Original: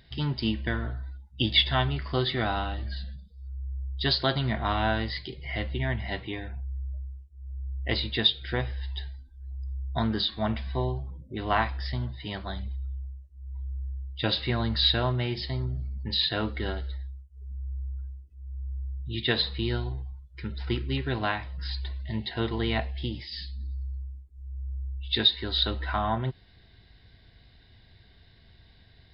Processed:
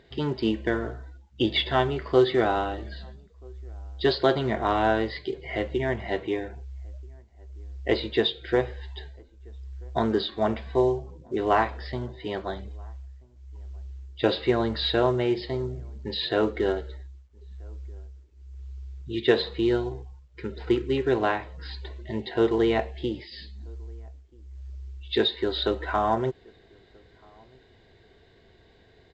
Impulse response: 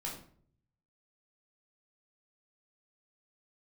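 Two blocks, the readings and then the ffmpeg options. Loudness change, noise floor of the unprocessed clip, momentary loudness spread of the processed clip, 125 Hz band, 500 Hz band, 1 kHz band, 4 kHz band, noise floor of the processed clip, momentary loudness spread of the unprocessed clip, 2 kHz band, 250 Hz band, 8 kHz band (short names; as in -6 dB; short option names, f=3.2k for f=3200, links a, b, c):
+3.0 dB, -56 dBFS, 19 LU, -4.0 dB, +10.0 dB, +4.0 dB, -4.5 dB, -57 dBFS, 16 LU, +0.5 dB, +5.0 dB, n/a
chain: -filter_complex "[0:a]highshelf=f=2.3k:g=-4.5,asplit=2[a][b];[b]highpass=f=720:p=1,volume=7dB,asoftclip=type=tanh:threshold=-10.5dB[c];[a][c]amix=inputs=2:normalize=0,lowpass=f=2.6k:p=1,volume=-6dB,equalizer=f=410:w=1.3:g=14,asplit=2[d][e];[e]adelay=1283,volume=-29dB,highshelf=f=4k:g=-28.9[f];[d][f]amix=inputs=2:normalize=0" -ar 16000 -c:a pcm_mulaw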